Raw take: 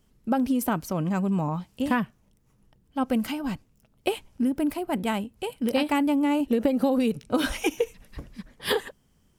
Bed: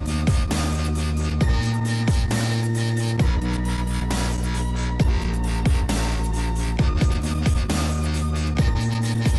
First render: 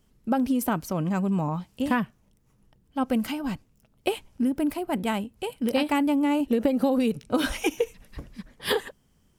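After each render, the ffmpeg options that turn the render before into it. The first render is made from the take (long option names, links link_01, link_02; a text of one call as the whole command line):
ffmpeg -i in.wav -af anull out.wav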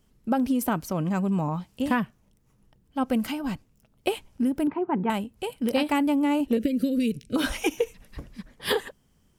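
ffmpeg -i in.wav -filter_complex "[0:a]asettb=1/sr,asplit=3[link_01][link_02][link_03];[link_01]atrim=end=4.674[link_04];[link_02]atrim=start=4.67:end=5.1,asetpts=PTS-STARTPTS,afade=type=in:duration=0.004:curve=qsin,afade=type=out:start_time=0.426:duration=0.004:curve=qsin,highpass=130,equalizer=frequency=170:width_type=q:width=4:gain=7,equalizer=frequency=390:width_type=q:width=4:gain=7,equalizer=frequency=610:width_type=q:width=4:gain=-9,equalizer=frequency=930:width_type=q:width=4:gain=8,equalizer=frequency=2000:width_type=q:width=4:gain=-3,lowpass=frequency=2100:width=0.5412,lowpass=frequency=2100:width=1.3066[link_05];[link_03]atrim=start=5.096[link_06];[link_04][link_05]acrossfade=duration=0.004:curve1=hsin:curve2=qsin[link_07];[link_07][link_06]acrossfade=duration=0.004:curve1=qsin:curve2=hsin,asettb=1/sr,asplit=3[link_08][link_09][link_10];[link_08]atrim=end=6.574[link_11];[link_09]atrim=start=6.57:end=7.36,asetpts=PTS-STARTPTS,afade=type=in:duration=0.004:curve=qsin,afade=type=out:start_time=0.786:duration=0.004:curve=qsin,asuperstop=centerf=910:order=4:qfactor=0.58[link_12];[link_10]atrim=start=7.356[link_13];[link_11][link_12]acrossfade=duration=0.004:curve1=hsin:curve2=qsin[link_14];[link_14][link_13]acrossfade=duration=0.004:curve1=qsin:curve2=hsin" out.wav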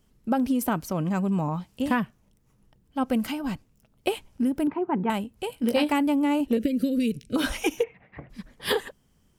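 ffmpeg -i in.wav -filter_complex "[0:a]asettb=1/sr,asplit=3[link_01][link_02][link_03];[link_01]atrim=end=5.514[link_04];[link_02]atrim=start=5.51:end=5.93,asetpts=PTS-STARTPTS,afade=type=in:duration=0.004:curve=qsin,afade=type=out:start_time=0.416:duration=0.004:curve=qsin,asplit=2[link_05][link_06];[link_06]adelay=17,volume=-6.5dB[link_07];[link_05][link_07]amix=inputs=2:normalize=0,atrim=end_sample=18522[link_08];[link_03]atrim=start=5.926[link_09];[link_04][link_08]acrossfade=duration=0.004:curve1=hsin:curve2=qsin[link_10];[link_10][link_09]acrossfade=duration=0.004:curve1=qsin:curve2=hsin,asplit=3[link_11][link_12][link_13];[link_11]afade=type=out:start_time=7.82:duration=0.02[link_14];[link_12]highpass=120,equalizer=frequency=130:width_type=q:width=4:gain=5,equalizer=frequency=240:width_type=q:width=4:gain=-5,equalizer=frequency=740:width_type=q:width=4:gain=9,equalizer=frequency=2100:width_type=q:width=4:gain=9,lowpass=frequency=2400:width=0.5412,lowpass=frequency=2400:width=1.3066,afade=type=in:start_time=7.82:duration=0.02,afade=type=out:start_time=8.29:duration=0.02[link_15];[link_13]afade=type=in:start_time=8.29:duration=0.02[link_16];[link_14][link_15][link_16]amix=inputs=3:normalize=0" out.wav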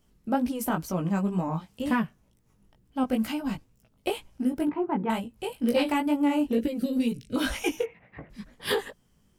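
ffmpeg -i in.wav -filter_complex "[0:a]asplit=2[link_01][link_02];[link_02]asoftclip=type=tanh:threshold=-24dB,volume=-11dB[link_03];[link_01][link_03]amix=inputs=2:normalize=0,flanger=delay=16.5:depth=3.7:speed=2.1" out.wav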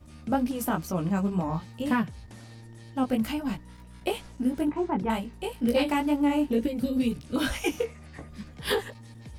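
ffmpeg -i in.wav -i bed.wav -filter_complex "[1:a]volume=-24.5dB[link_01];[0:a][link_01]amix=inputs=2:normalize=0" out.wav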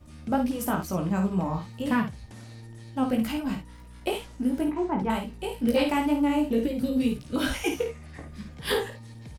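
ffmpeg -i in.wav -af "aecho=1:1:53|68:0.422|0.15" out.wav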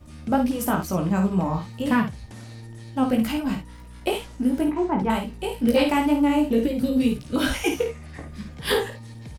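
ffmpeg -i in.wav -af "volume=4dB" out.wav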